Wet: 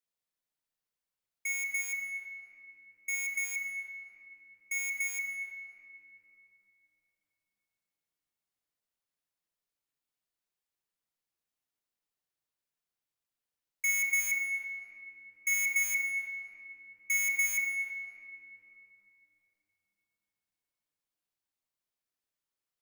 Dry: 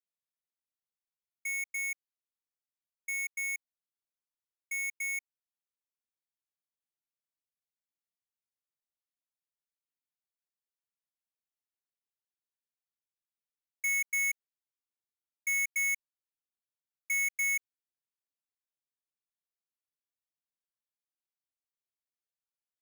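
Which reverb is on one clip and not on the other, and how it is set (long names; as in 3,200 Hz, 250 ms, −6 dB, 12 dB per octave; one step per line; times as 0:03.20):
rectangular room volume 200 cubic metres, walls hard, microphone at 0.43 metres
level +2 dB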